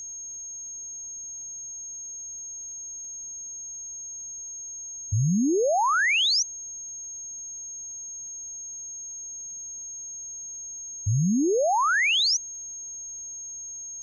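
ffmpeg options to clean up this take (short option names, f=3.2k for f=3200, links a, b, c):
-af "adeclick=t=4,bandreject=f=6.5k:w=30,agate=range=-21dB:threshold=-30dB"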